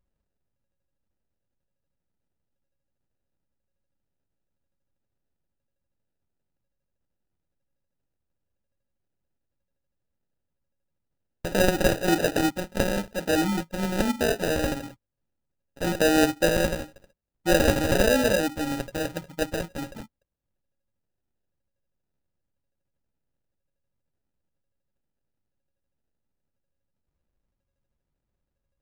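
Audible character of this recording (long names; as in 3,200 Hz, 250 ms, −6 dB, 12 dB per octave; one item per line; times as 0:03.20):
a buzz of ramps at a fixed pitch in blocks of 16 samples
phaser sweep stages 2, 1 Hz, lowest notch 620–4,300 Hz
aliases and images of a low sample rate 1,100 Hz, jitter 0%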